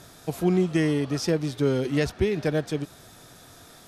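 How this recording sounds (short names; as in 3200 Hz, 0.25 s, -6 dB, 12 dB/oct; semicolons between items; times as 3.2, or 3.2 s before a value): noise floor -50 dBFS; spectral tilt -6.5 dB/oct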